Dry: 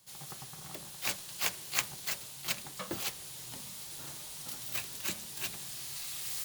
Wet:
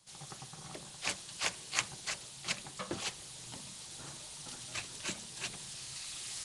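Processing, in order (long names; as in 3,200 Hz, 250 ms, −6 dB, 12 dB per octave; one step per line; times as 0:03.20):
Nellymoser 44 kbit/s 22,050 Hz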